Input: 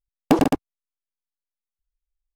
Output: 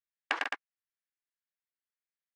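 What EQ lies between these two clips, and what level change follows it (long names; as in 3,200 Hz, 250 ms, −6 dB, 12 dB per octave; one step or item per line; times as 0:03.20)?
four-pole ladder band-pass 2,000 Hz, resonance 50%
+9.0 dB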